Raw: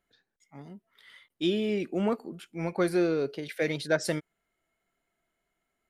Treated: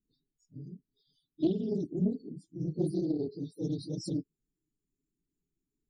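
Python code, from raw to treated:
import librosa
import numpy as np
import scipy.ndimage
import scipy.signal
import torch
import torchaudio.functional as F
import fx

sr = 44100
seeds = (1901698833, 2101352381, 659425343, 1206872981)

y = fx.phase_scramble(x, sr, seeds[0], window_ms=50)
y = scipy.signal.sosfilt(scipy.signal.cheby2(4, 70, [910.0, 1900.0], 'bandstop', fs=sr, output='sos'), y)
y = fx.high_shelf(y, sr, hz=7600.0, db=-10.5)
y = y + 0.37 * np.pad(y, (int(7.0 * sr / 1000.0), 0))[:len(y)]
y = fx.spec_topn(y, sr, count=32)
y = fx.doppler_dist(y, sr, depth_ms=0.22)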